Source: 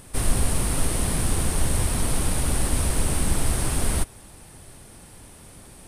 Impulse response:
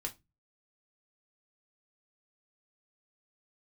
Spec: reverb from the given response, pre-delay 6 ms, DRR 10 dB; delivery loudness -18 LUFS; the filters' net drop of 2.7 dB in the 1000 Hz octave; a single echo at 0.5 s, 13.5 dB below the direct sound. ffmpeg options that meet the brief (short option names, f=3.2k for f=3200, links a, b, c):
-filter_complex "[0:a]equalizer=f=1k:t=o:g=-3.5,aecho=1:1:500:0.211,asplit=2[a][b];[1:a]atrim=start_sample=2205,adelay=6[c];[b][c]afir=irnorm=-1:irlink=0,volume=-9.5dB[d];[a][d]amix=inputs=2:normalize=0,volume=7dB"